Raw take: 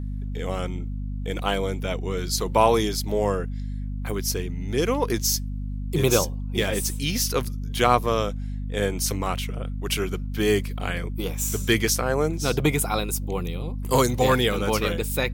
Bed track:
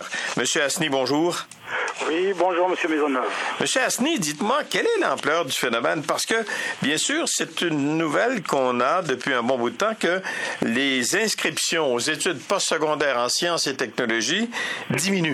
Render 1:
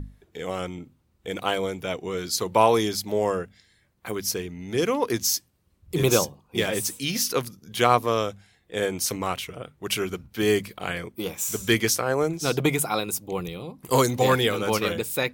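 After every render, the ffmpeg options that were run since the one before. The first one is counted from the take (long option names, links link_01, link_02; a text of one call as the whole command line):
ffmpeg -i in.wav -af "bandreject=frequency=50:width_type=h:width=6,bandreject=frequency=100:width_type=h:width=6,bandreject=frequency=150:width_type=h:width=6,bandreject=frequency=200:width_type=h:width=6,bandreject=frequency=250:width_type=h:width=6" out.wav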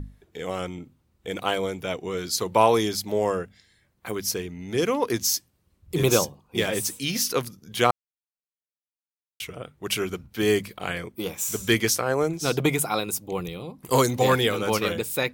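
ffmpeg -i in.wav -filter_complex "[0:a]asplit=3[link_01][link_02][link_03];[link_01]atrim=end=7.91,asetpts=PTS-STARTPTS,afade=type=out:start_time=7.906:duration=0.004:curve=hsin[link_04];[link_02]atrim=start=7.91:end=9.4,asetpts=PTS-STARTPTS,volume=0[link_05];[link_03]atrim=start=9.4,asetpts=PTS-STARTPTS,afade=type=in:duration=0.004:curve=hsin[link_06];[link_04][link_05][link_06]concat=n=3:v=0:a=1" out.wav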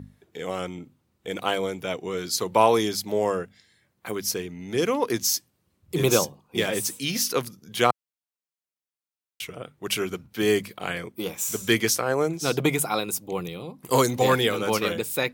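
ffmpeg -i in.wav -af "highpass=110" out.wav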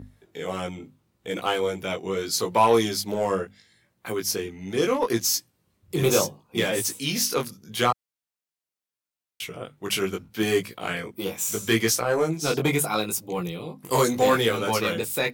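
ffmpeg -i in.wav -filter_complex "[0:a]asplit=2[link_01][link_02];[link_02]asoftclip=type=hard:threshold=-20dB,volume=-4dB[link_03];[link_01][link_03]amix=inputs=2:normalize=0,flanger=delay=17:depth=3.8:speed=0.75" out.wav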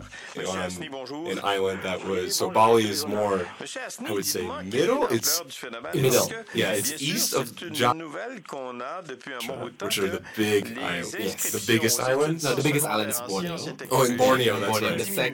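ffmpeg -i in.wav -i bed.wav -filter_complex "[1:a]volume=-13.5dB[link_01];[0:a][link_01]amix=inputs=2:normalize=0" out.wav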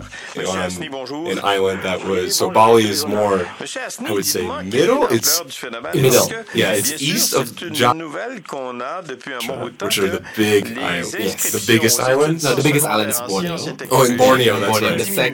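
ffmpeg -i in.wav -af "volume=8dB,alimiter=limit=-1dB:level=0:latency=1" out.wav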